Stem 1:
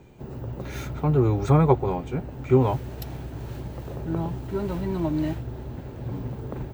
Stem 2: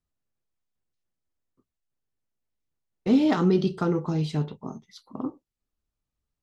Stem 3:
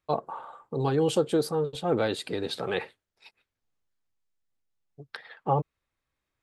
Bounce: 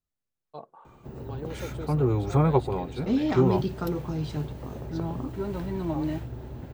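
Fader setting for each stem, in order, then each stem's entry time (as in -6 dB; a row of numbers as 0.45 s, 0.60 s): -3.5 dB, -5.0 dB, -14.5 dB; 0.85 s, 0.00 s, 0.45 s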